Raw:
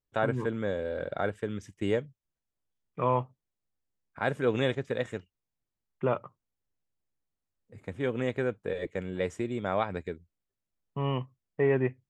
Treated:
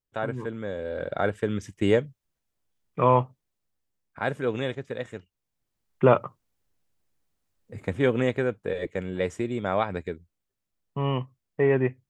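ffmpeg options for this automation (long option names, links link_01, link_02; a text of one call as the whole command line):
ffmpeg -i in.wav -af "volume=19dB,afade=type=in:start_time=0.69:duration=0.83:silence=0.354813,afade=type=out:start_time=3.2:duration=1.44:silence=0.354813,afade=type=in:start_time=5.15:duration=0.89:silence=0.251189,afade=type=out:start_time=7.82:duration=0.62:silence=0.473151" out.wav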